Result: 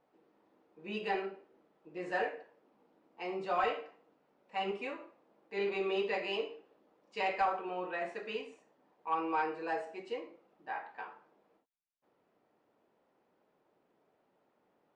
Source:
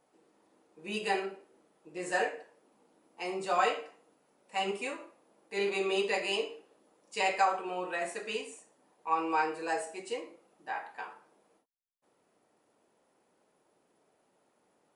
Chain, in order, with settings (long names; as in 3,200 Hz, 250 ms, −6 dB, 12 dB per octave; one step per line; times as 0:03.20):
soft clipping −19 dBFS, distortion −21 dB
high-frequency loss of the air 220 metres
level −1.5 dB